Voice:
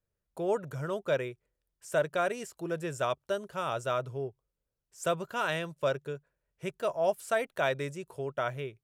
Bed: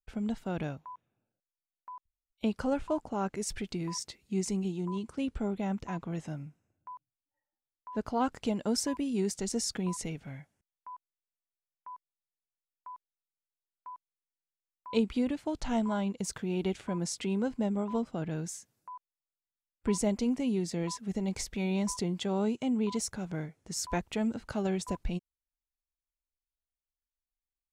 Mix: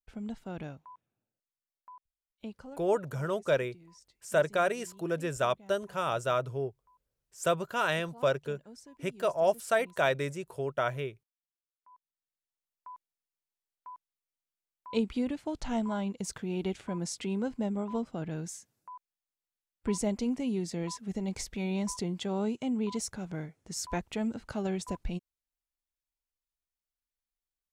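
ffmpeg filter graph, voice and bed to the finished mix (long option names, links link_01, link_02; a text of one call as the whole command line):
ffmpeg -i stem1.wav -i stem2.wav -filter_complex "[0:a]adelay=2400,volume=2dB[link_01];[1:a]volume=14dB,afade=type=out:start_time=1.89:duration=0.94:silence=0.16788,afade=type=in:start_time=11.76:duration=0.89:silence=0.105925[link_02];[link_01][link_02]amix=inputs=2:normalize=0" out.wav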